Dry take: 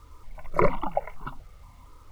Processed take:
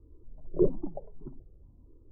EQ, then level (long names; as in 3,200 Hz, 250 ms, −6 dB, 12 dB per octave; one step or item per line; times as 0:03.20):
transistor ladder low-pass 410 Hz, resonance 60%
+5.0 dB